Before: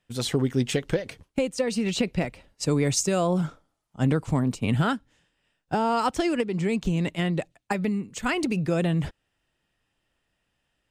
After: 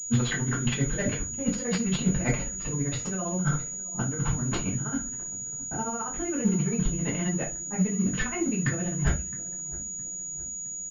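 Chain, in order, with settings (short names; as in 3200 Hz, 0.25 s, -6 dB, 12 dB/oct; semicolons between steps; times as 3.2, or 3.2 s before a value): block floating point 5-bit; bell 1500 Hz +9 dB 0.36 oct; negative-ratio compressor -34 dBFS, ratio -1; tremolo 15 Hz, depth 93%; feedback echo 0.664 s, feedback 54%, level -19 dB; reverb RT60 0.25 s, pre-delay 4 ms, DRR -5.5 dB; low-pass opened by the level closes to 810 Hz, open at -21.5 dBFS; pulse-width modulation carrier 6800 Hz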